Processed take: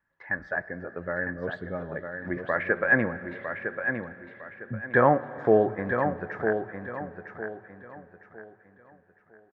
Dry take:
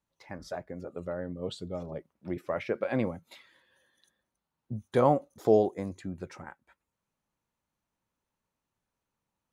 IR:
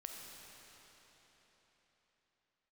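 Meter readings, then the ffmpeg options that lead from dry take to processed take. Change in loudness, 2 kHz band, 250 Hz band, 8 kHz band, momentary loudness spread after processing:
+3.5 dB, +19.0 dB, +3.0 dB, n/a, 21 LU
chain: -filter_complex "[0:a]lowpass=f=1.7k:t=q:w=13,aecho=1:1:956|1912|2868|3824:0.447|0.138|0.0429|0.0133,asplit=2[a][b];[1:a]atrim=start_sample=2205[c];[b][c]afir=irnorm=-1:irlink=0,volume=-8dB[d];[a][d]amix=inputs=2:normalize=0"

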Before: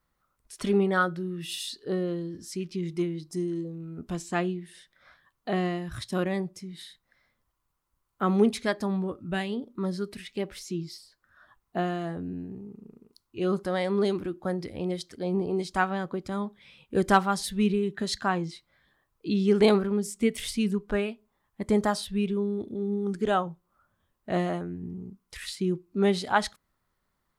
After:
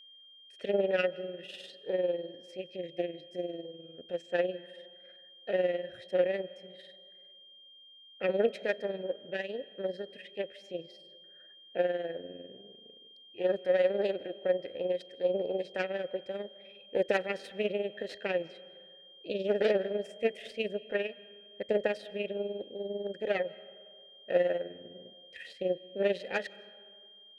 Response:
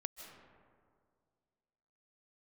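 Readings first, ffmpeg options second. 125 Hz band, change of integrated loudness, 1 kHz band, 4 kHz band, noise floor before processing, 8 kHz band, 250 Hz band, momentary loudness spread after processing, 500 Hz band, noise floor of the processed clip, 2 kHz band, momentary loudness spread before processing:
-16.5 dB, -4.5 dB, -13.0 dB, -5.0 dB, -78 dBFS, under -20 dB, -13.5 dB, 23 LU, -0.5 dB, -56 dBFS, -4.5 dB, 15 LU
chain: -filter_complex "[0:a]aeval=exprs='0.398*(cos(1*acos(clip(val(0)/0.398,-1,1)))-cos(1*PI/2))+0.1*(cos(6*acos(clip(val(0)/0.398,-1,1)))-cos(6*PI/2))':c=same,asplit=3[a][b][c];[a]bandpass=f=530:t=q:w=8,volume=0dB[d];[b]bandpass=f=1.84k:t=q:w=8,volume=-6dB[e];[c]bandpass=f=2.48k:t=q:w=8,volume=-9dB[f];[d][e][f]amix=inputs=3:normalize=0,tremolo=f=20:d=0.58,aeval=exprs='val(0)+0.001*sin(2*PI*3200*n/s)':c=same,asplit=2[g][h];[1:a]atrim=start_sample=2205[i];[h][i]afir=irnorm=-1:irlink=0,volume=-10dB[j];[g][j]amix=inputs=2:normalize=0,volume=6dB"

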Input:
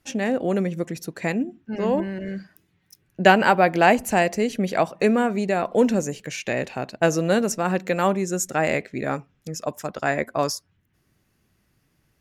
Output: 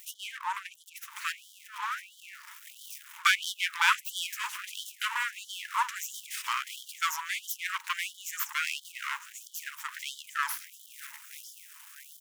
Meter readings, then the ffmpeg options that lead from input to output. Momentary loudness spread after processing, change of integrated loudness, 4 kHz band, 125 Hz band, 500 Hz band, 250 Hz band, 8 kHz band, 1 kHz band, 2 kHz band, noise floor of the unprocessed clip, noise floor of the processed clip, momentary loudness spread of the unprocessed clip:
20 LU, -9.5 dB, +1.0 dB, under -40 dB, under -40 dB, under -40 dB, -4.5 dB, -10.0 dB, -5.0 dB, -68 dBFS, -55 dBFS, 13 LU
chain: -af "aeval=exprs='val(0)+0.5*0.0335*sgn(val(0))':c=same,aecho=1:1:952|1904|2856:0.1|0.044|0.0194,aeval=exprs='abs(val(0))':c=same,equalizer=f=4.4k:w=2.7:g=-7.5,afftfilt=real='re*gte(b*sr/1024,840*pow(3000/840,0.5+0.5*sin(2*PI*1.5*pts/sr)))':imag='im*gte(b*sr/1024,840*pow(3000/840,0.5+0.5*sin(2*PI*1.5*pts/sr)))':win_size=1024:overlap=0.75"

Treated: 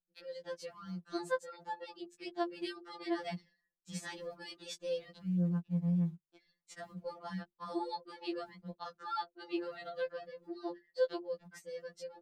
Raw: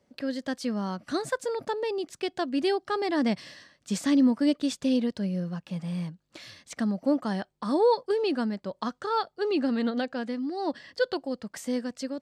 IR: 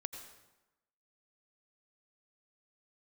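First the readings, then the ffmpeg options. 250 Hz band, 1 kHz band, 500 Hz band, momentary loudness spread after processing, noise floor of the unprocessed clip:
-13.0 dB, -10.5 dB, -11.0 dB, 13 LU, -72 dBFS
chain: -filter_complex "[0:a]bandreject=f=50:t=h:w=6,bandreject=f=100:t=h:w=6,bandreject=f=150:t=h:w=6,bandreject=f=200:t=h:w=6,bandreject=f=250:t=h:w=6,bandreject=f=300:t=h:w=6,bandreject=f=350:t=h:w=6,bandreject=f=400:t=h:w=6,bandreject=f=450:t=h:w=6,anlmdn=0.631,lowshelf=f=180:g=4.5,acrossover=split=100|1100[a][b][c];[a]acrusher=bits=2:mode=log:mix=0:aa=0.000001[d];[d][b][c]amix=inputs=3:normalize=0,afftfilt=real='re*2.83*eq(mod(b,8),0)':imag='im*2.83*eq(mod(b,8),0)':win_size=2048:overlap=0.75,volume=-7.5dB"

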